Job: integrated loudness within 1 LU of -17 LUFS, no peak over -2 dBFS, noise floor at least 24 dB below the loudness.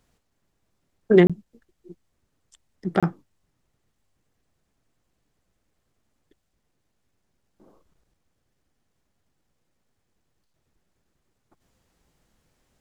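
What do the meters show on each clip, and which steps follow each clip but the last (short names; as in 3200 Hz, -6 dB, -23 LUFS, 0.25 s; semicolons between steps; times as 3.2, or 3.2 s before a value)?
dropouts 2; longest dropout 26 ms; loudness -21.0 LUFS; peak -2.0 dBFS; loudness target -17.0 LUFS
-> interpolate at 1.27/3, 26 ms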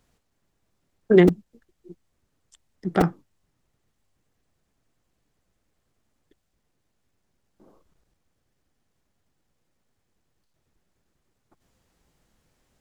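dropouts 0; loudness -20.5 LUFS; peak -2.0 dBFS; loudness target -17.0 LUFS
-> gain +3.5 dB; limiter -2 dBFS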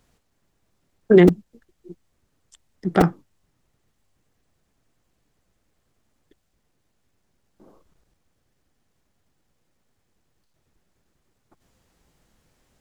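loudness -17.5 LUFS; peak -2.0 dBFS; noise floor -71 dBFS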